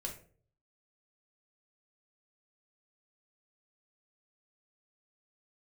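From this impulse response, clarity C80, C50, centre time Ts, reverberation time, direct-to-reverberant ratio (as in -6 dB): 14.0 dB, 9.0 dB, 18 ms, 0.50 s, 0.5 dB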